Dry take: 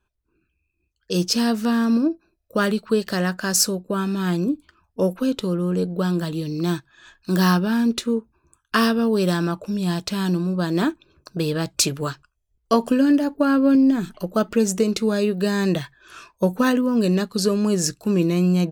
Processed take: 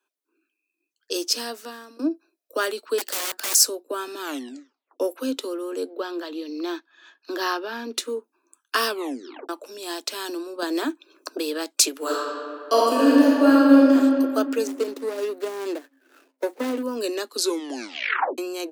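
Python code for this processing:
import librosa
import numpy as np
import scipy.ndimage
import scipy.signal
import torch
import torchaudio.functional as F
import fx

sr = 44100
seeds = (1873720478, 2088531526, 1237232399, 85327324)

y = fx.overflow_wrap(x, sr, gain_db=22.5, at=(2.98, 3.55))
y = fx.moving_average(y, sr, points=5, at=(5.9, 7.94))
y = fx.band_squash(y, sr, depth_pct=100, at=(10.62, 11.38))
y = fx.reverb_throw(y, sr, start_s=11.97, length_s=1.97, rt60_s=2.3, drr_db=-6.0)
y = fx.median_filter(y, sr, points=41, at=(14.67, 16.83))
y = fx.edit(y, sr, fx.fade_out_to(start_s=1.13, length_s=0.86, floor_db=-21.0),
    fx.tape_stop(start_s=4.21, length_s=0.79),
    fx.tape_stop(start_s=8.87, length_s=0.62),
    fx.tape_stop(start_s=17.37, length_s=1.01), tone=tone)
y = scipy.signal.sosfilt(scipy.signal.butter(16, 260.0, 'highpass', fs=sr, output='sos'), y)
y = fx.high_shelf(y, sr, hz=4300.0, db=7.0)
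y = y * 10.0 ** (-3.0 / 20.0)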